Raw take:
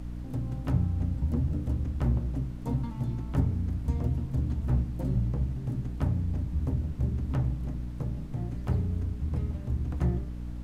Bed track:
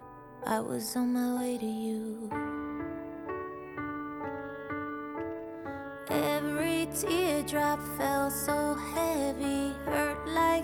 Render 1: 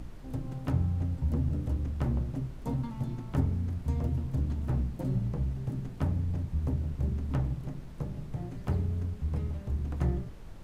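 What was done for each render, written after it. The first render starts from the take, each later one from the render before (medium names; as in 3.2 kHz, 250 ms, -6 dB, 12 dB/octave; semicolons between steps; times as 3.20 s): hum notches 60/120/180/240/300/360 Hz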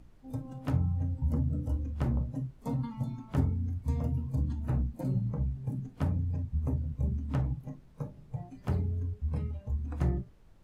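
noise print and reduce 13 dB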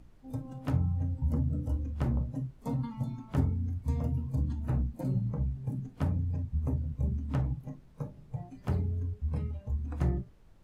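no audible change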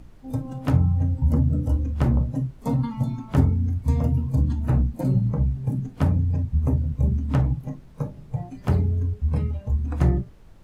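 trim +9.5 dB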